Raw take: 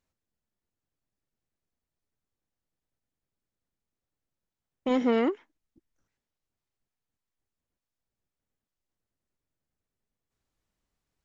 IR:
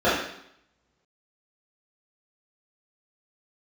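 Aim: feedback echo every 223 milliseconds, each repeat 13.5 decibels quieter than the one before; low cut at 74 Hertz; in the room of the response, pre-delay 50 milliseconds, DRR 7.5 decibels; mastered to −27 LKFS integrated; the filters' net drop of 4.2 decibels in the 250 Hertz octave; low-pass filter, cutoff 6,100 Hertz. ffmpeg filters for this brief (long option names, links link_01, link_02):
-filter_complex "[0:a]highpass=74,lowpass=6100,equalizer=frequency=250:width_type=o:gain=-4.5,aecho=1:1:223|446:0.211|0.0444,asplit=2[link_01][link_02];[1:a]atrim=start_sample=2205,adelay=50[link_03];[link_02][link_03]afir=irnorm=-1:irlink=0,volume=-28dB[link_04];[link_01][link_04]amix=inputs=2:normalize=0,volume=2dB"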